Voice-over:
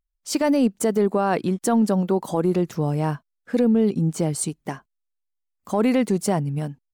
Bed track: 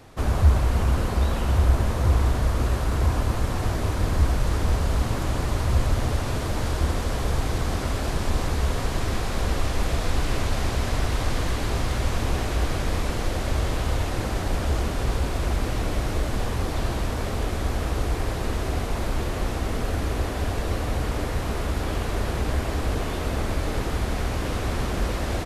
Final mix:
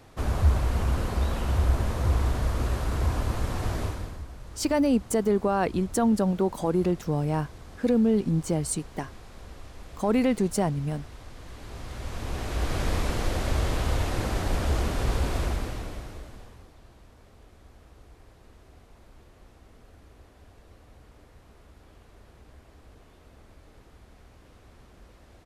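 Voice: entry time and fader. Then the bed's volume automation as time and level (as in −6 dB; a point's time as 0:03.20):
4.30 s, −3.5 dB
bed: 0:03.83 −4 dB
0:04.25 −20 dB
0:11.35 −20 dB
0:12.82 −1.5 dB
0:15.39 −1.5 dB
0:16.77 −27 dB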